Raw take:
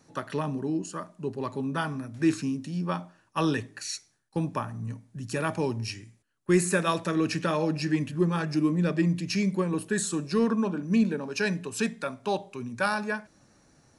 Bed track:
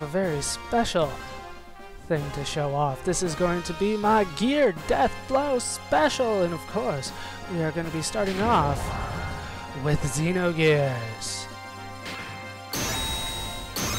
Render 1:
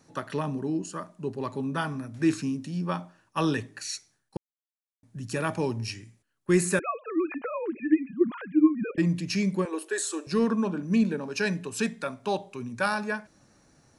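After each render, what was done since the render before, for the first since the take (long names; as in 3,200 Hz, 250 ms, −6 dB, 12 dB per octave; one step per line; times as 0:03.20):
0:04.37–0:05.03: silence
0:06.79–0:08.98: three sine waves on the formant tracks
0:09.65–0:10.27: Butterworth high-pass 320 Hz 48 dB per octave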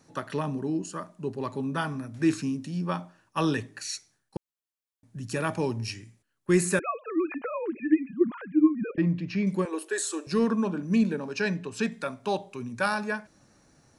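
0:08.30–0:09.47: high-frequency loss of the air 290 metres
0:11.33–0:11.92: high-frequency loss of the air 73 metres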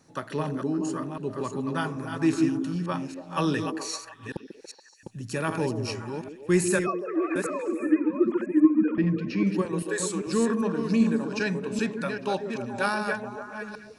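delay that plays each chunk backwards 393 ms, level −6.5 dB
on a send: echo through a band-pass that steps 142 ms, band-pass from 310 Hz, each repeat 0.7 octaves, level −5 dB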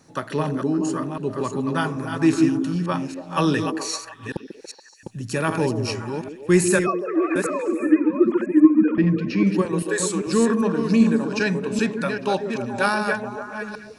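level +5.5 dB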